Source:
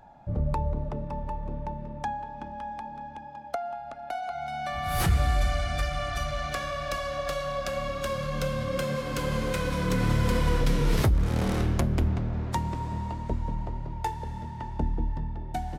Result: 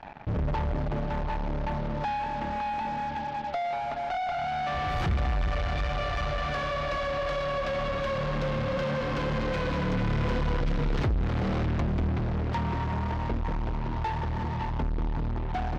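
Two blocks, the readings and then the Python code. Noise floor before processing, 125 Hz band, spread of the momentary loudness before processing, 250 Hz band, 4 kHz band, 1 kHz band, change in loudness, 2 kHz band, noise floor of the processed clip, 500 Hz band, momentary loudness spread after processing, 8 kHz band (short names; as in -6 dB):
-41 dBFS, -1.0 dB, 12 LU, 0.0 dB, -1.5 dB, +2.0 dB, 0.0 dB, +1.0 dB, -32 dBFS, +1.0 dB, 4 LU, -12.5 dB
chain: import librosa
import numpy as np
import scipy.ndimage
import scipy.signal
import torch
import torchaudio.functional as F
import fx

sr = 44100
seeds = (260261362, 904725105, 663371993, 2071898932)

p1 = fx.fuzz(x, sr, gain_db=47.0, gate_db=-51.0)
p2 = x + (p1 * librosa.db_to_amplitude(-7.5))
p3 = fx.air_absorb(p2, sr, metres=210.0)
y = p3 * librosa.db_to_amplitude(-9.0)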